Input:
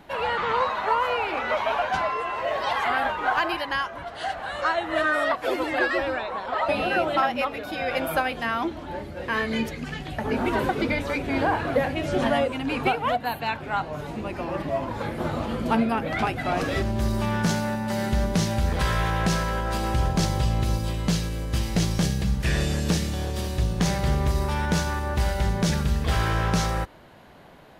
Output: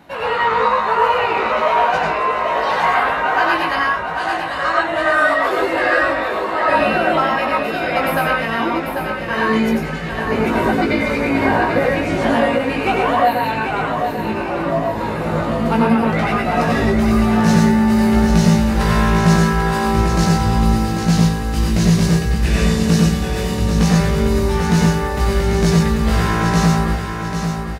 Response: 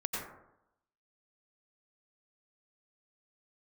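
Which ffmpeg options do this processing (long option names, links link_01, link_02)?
-filter_complex "[0:a]highpass=49,bandreject=frequency=3300:width=17,asplit=2[link_01][link_02];[link_02]adelay=18,volume=-4dB[link_03];[link_01][link_03]amix=inputs=2:normalize=0,aecho=1:1:793|1586|2379|3172|3965:0.447|0.188|0.0788|0.0331|0.0139[link_04];[1:a]atrim=start_sample=2205,afade=type=out:start_time=0.19:duration=0.01,atrim=end_sample=8820[link_05];[link_04][link_05]afir=irnorm=-1:irlink=0,volume=3dB"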